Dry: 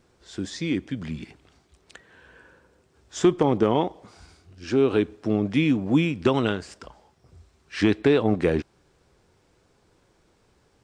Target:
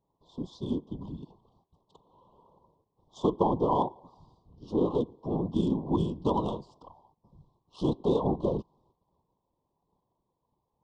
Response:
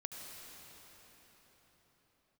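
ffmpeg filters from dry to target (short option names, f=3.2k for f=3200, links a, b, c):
-af "agate=range=-11dB:threshold=-60dB:ratio=16:detection=peak,afftfilt=real='hypot(re,im)*cos(2*PI*random(0))':imag='hypot(re,im)*sin(2*PI*random(1))':win_size=512:overlap=0.75,adynamicsmooth=sensitivity=4:basefreq=2.6k,equalizer=f=160:t=o:w=0.67:g=4,equalizer=f=1k:t=o:w=0.67:g=12,equalizer=f=2.5k:t=o:w=0.67:g=9,aresample=22050,aresample=44100,asuperstop=centerf=1900:order=12:qfactor=0.83,volume=-2dB"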